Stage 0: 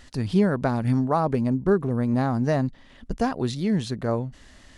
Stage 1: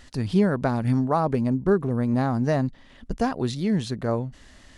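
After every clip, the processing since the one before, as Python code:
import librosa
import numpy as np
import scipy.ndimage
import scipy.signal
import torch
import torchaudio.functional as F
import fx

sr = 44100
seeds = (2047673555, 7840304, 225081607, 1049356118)

y = x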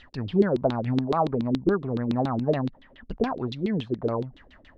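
y = fx.dynamic_eq(x, sr, hz=1800.0, q=1.8, threshold_db=-44.0, ratio=4.0, max_db=-5)
y = fx.filter_lfo_lowpass(y, sr, shape='saw_down', hz=7.1, low_hz=280.0, high_hz=3900.0, q=4.9)
y = y * librosa.db_to_amplitude(-5.0)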